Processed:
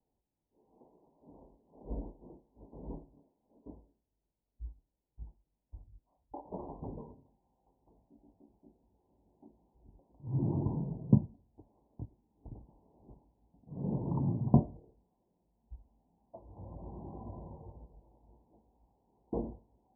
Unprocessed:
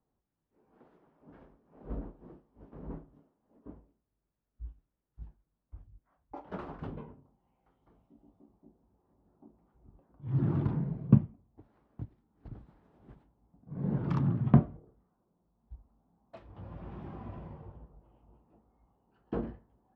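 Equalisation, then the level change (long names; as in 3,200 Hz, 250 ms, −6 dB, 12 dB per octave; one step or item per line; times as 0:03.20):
Butterworth low-pass 1,000 Hz 96 dB per octave
parametric band 150 Hz −4 dB 1.2 octaves
0.0 dB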